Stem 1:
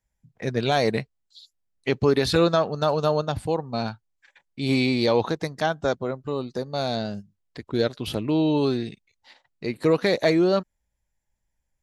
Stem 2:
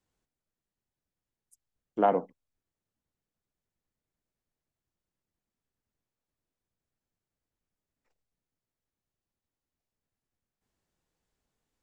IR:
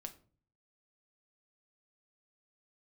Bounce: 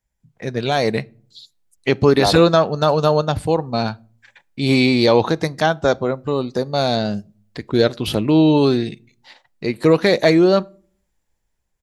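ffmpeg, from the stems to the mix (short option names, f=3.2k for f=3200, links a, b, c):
-filter_complex "[0:a]volume=-0.5dB,asplit=2[a][b];[b]volume=-7.5dB[c];[1:a]adelay=200,volume=-1.5dB[d];[2:a]atrim=start_sample=2205[e];[c][e]afir=irnorm=-1:irlink=0[f];[a][d][f]amix=inputs=3:normalize=0,dynaudnorm=f=230:g=9:m=11.5dB"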